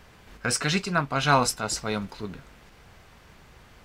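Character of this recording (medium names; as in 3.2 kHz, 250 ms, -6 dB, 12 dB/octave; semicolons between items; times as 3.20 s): noise floor -54 dBFS; spectral tilt -3.5 dB/octave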